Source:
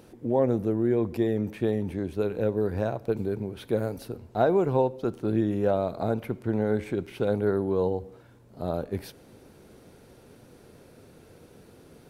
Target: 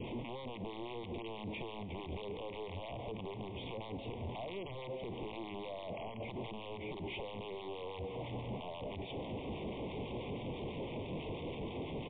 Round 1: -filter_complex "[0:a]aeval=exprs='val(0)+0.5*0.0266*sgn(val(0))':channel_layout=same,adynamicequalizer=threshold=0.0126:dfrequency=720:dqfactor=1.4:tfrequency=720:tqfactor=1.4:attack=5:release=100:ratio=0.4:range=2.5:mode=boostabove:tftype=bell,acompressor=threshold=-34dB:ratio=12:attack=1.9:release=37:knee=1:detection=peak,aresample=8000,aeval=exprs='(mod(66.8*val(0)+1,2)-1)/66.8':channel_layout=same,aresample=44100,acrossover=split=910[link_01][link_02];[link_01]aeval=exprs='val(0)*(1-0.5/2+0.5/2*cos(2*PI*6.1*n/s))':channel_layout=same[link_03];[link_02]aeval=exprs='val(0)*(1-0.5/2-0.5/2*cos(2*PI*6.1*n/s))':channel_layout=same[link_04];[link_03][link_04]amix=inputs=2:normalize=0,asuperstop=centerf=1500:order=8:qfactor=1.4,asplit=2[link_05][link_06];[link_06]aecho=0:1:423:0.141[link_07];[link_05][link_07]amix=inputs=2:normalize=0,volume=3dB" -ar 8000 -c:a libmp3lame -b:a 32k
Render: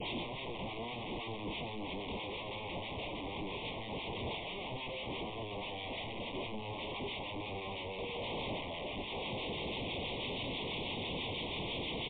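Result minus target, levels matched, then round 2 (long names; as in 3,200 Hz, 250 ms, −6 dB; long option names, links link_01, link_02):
downward compressor: peak gain reduction −6 dB
-filter_complex "[0:a]aeval=exprs='val(0)+0.5*0.0266*sgn(val(0))':channel_layout=same,adynamicequalizer=threshold=0.0126:dfrequency=720:dqfactor=1.4:tfrequency=720:tqfactor=1.4:attack=5:release=100:ratio=0.4:range=2.5:mode=boostabove:tftype=bell,acompressor=threshold=-40.5dB:ratio=12:attack=1.9:release=37:knee=1:detection=peak,aresample=8000,aeval=exprs='(mod(66.8*val(0)+1,2)-1)/66.8':channel_layout=same,aresample=44100,acrossover=split=910[link_01][link_02];[link_01]aeval=exprs='val(0)*(1-0.5/2+0.5/2*cos(2*PI*6.1*n/s))':channel_layout=same[link_03];[link_02]aeval=exprs='val(0)*(1-0.5/2-0.5/2*cos(2*PI*6.1*n/s))':channel_layout=same[link_04];[link_03][link_04]amix=inputs=2:normalize=0,asuperstop=centerf=1500:order=8:qfactor=1.4,asplit=2[link_05][link_06];[link_06]aecho=0:1:423:0.141[link_07];[link_05][link_07]amix=inputs=2:normalize=0,volume=3dB" -ar 8000 -c:a libmp3lame -b:a 32k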